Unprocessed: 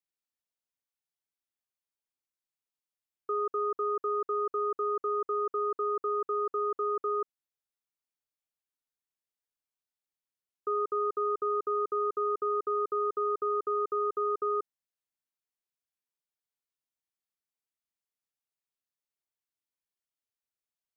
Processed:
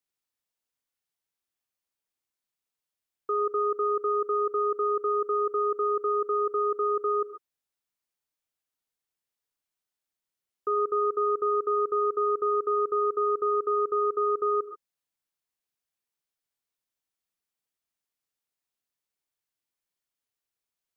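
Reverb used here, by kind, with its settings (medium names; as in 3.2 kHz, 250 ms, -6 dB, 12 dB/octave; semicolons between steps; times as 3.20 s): gated-style reverb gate 160 ms rising, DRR 10 dB; trim +3.5 dB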